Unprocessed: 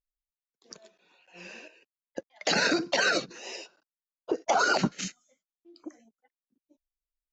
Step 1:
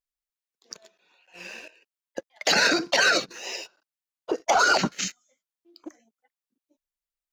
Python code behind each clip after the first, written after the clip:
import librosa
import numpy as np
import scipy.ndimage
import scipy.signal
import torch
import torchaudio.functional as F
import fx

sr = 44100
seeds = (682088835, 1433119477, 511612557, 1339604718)

y = fx.low_shelf(x, sr, hz=430.0, db=-8.5)
y = fx.leveller(y, sr, passes=1)
y = y * librosa.db_to_amplitude(3.0)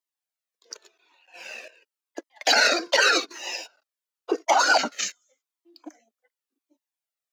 y = scipy.signal.sosfilt(scipy.signal.cheby1(4, 1.0, 270.0, 'highpass', fs=sr, output='sos'), x)
y = fx.comb_cascade(y, sr, direction='falling', hz=0.89)
y = y * librosa.db_to_amplitude(6.5)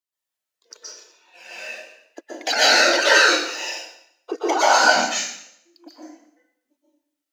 y = fx.rev_plate(x, sr, seeds[0], rt60_s=0.72, hf_ratio=0.95, predelay_ms=110, drr_db=-8.0)
y = y * librosa.db_to_amplitude(-3.5)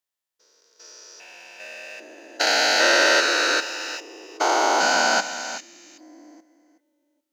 y = fx.spec_steps(x, sr, hold_ms=400)
y = y + 10.0 ** (-12.5 / 20.0) * np.pad(y, (int(373 * sr / 1000.0), 0))[:len(y)]
y = y * librosa.db_to_amplitude(1.0)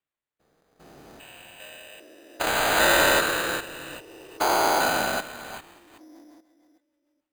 y = fx.rotary_switch(x, sr, hz=0.6, then_hz=6.7, switch_at_s=5.36)
y = np.repeat(y[::8], 8)[:len(y)]
y = y * librosa.db_to_amplitude(-1.5)